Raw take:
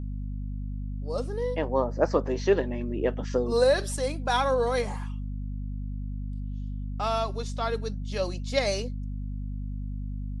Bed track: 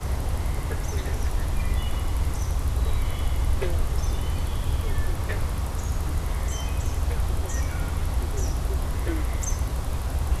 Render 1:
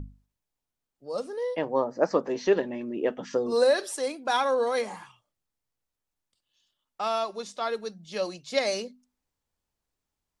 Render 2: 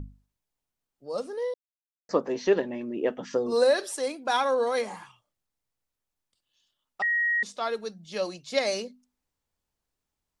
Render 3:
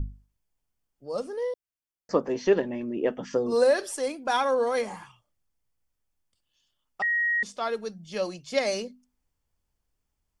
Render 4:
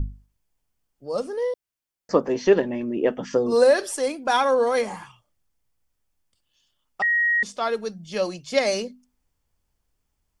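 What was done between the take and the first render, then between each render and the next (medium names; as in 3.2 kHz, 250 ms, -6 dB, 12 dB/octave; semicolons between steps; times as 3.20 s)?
hum notches 50/100/150/200/250 Hz
1.54–2.09 s: mute; 7.02–7.43 s: bleep 1.89 kHz -22 dBFS
bass shelf 120 Hz +10.5 dB; band-stop 3.9 kHz, Q 9.2
trim +4.5 dB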